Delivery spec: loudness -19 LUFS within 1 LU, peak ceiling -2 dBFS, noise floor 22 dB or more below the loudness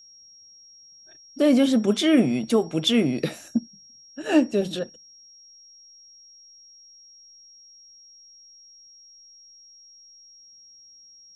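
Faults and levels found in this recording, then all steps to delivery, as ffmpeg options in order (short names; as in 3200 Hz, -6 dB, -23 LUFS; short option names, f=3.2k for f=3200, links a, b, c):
steady tone 5600 Hz; tone level -48 dBFS; loudness -22.5 LUFS; peak -7.5 dBFS; loudness target -19.0 LUFS
-> -af "bandreject=f=5.6k:w=30"
-af "volume=3.5dB"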